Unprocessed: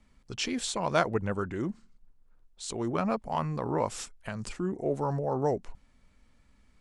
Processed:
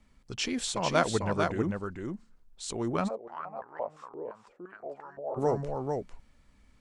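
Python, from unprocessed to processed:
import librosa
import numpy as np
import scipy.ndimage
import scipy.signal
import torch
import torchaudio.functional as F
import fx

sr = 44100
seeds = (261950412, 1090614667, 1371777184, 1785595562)

y = x + 10.0 ** (-4.5 / 20.0) * np.pad(x, (int(447 * sr / 1000.0), 0))[:len(x)]
y = fx.filter_held_bandpass(y, sr, hz=5.8, low_hz=430.0, high_hz=1700.0, at=(3.07, 5.36), fade=0.02)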